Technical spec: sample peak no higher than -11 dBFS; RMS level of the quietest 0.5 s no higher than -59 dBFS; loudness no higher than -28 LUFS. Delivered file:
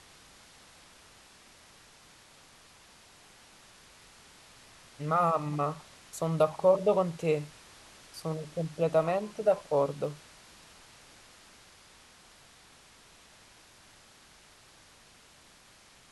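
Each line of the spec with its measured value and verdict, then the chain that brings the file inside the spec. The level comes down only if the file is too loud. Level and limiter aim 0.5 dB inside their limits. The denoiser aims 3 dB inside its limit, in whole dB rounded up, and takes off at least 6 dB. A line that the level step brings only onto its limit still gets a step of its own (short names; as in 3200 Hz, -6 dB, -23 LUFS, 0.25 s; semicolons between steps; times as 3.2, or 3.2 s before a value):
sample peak -12.0 dBFS: OK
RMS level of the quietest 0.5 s -58 dBFS: fail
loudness -29.5 LUFS: OK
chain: denoiser 6 dB, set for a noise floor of -58 dBFS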